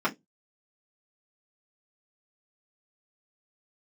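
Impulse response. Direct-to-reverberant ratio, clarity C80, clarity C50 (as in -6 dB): -7.5 dB, 34.0 dB, 23.0 dB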